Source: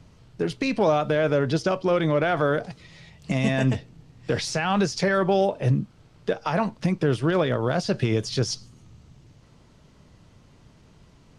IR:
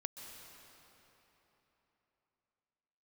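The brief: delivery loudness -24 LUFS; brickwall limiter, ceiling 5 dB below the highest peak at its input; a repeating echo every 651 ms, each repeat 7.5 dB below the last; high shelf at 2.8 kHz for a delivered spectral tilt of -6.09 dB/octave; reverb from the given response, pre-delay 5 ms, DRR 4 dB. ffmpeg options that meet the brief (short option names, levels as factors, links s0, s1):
-filter_complex "[0:a]highshelf=f=2800:g=-7.5,alimiter=limit=0.178:level=0:latency=1,aecho=1:1:651|1302|1953|2604|3255:0.422|0.177|0.0744|0.0312|0.0131,asplit=2[s0][s1];[1:a]atrim=start_sample=2205,adelay=5[s2];[s1][s2]afir=irnorm=-1:irlink=0,volume=0.794[s3];[s0][s3]amix=inputs=2:normalize=0,volume=1.06"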